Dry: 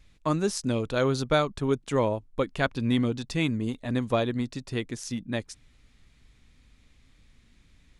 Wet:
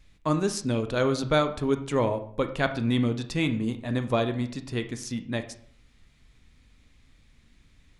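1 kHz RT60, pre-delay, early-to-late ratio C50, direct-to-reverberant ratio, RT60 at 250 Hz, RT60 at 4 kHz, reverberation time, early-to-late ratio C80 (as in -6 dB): 0.50 s, 21 ms, 12.0 dB, 8.0 dB, 0.75 s, 0.40 s, 0.55 s, 15.0 dB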